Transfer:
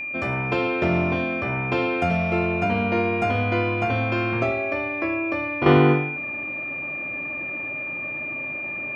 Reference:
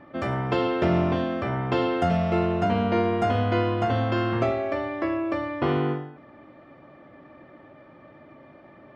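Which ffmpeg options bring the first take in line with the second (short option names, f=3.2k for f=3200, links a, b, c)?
-af "bandreject=f=2.4k:w=30,asetnsamples=n=441:p=0,asendcmd='5.66 volume volume -9dB',volume=0dB"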